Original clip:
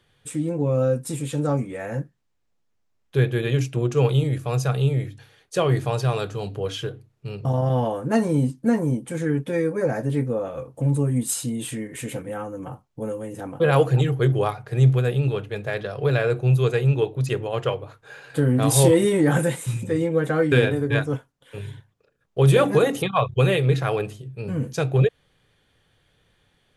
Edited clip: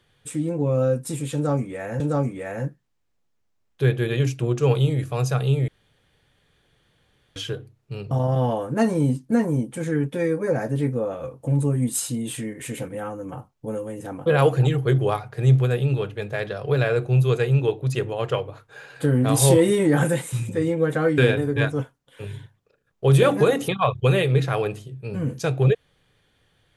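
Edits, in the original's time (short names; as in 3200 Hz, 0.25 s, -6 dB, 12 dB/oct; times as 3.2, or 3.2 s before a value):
1.34–2 loop, 2 plays
5.02–6.7 room tone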